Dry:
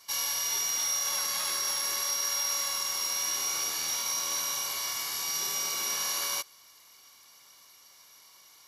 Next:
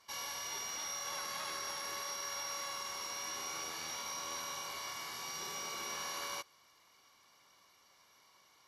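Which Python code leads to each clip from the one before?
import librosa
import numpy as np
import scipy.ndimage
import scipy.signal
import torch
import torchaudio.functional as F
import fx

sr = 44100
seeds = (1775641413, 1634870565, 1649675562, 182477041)

y = fx.lowpass(x, sr, hz=1800.0, slope=6)
y = y * 10.0 ** (-2.5 / 20.0)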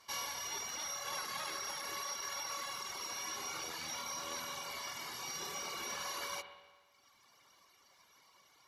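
y = fx.dereverb_blind(x, sr, rt60_s=1.4)
y = fx.rev_spring(y, sr, rt60_s=1.4, pass_ms=(49, 57), chirp_ms=40, drr_db=9.0)
y = y * 10.0 ** (3.0 / 20.0)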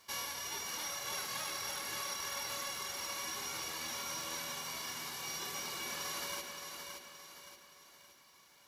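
y = fx.envelope_flatten(x, sr, power=0.6)
y = fx.echo_feedback(y, sr, ms=571, feedback_pct=44, wet_db=-6)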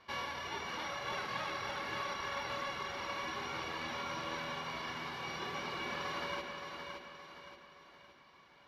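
y = fx.air_absorb(x, sr, metres=340.0)
y = y * 10.0 ** (6.5 / 20.0)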